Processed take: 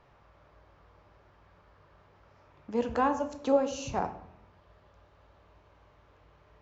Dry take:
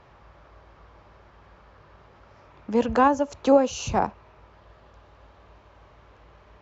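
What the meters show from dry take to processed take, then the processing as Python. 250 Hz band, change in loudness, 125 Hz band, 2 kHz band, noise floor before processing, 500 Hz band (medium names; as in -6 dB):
-8.0 dB, -7.5 dB, -7.5 dB, -7.5 dB, -54 dBFS, -7.0 dB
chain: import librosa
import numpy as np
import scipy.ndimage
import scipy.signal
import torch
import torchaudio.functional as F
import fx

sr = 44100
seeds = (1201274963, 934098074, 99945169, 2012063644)

y = fx.room_shoebox(x, sr, seeds[0], volume_m3=160.0, walls='mixed', distance_m=0.41)
y = y * 10.0 ** (-8.5 / 20.0)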